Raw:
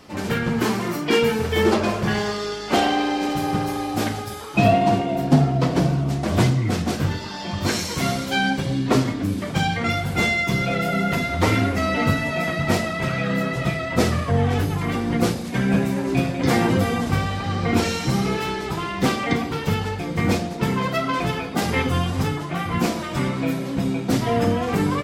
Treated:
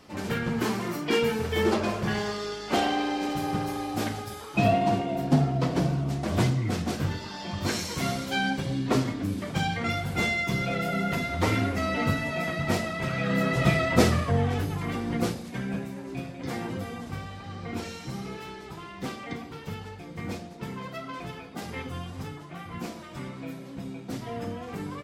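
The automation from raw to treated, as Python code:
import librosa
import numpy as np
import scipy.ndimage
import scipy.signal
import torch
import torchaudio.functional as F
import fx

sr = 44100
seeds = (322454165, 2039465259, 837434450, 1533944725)

y = fx.gain(x, sr, db=fx.line((13.09, -6.0), (13.76, 2.0), (14.57, -7.0), (15.23, -7.0), (15.91, -14.5)))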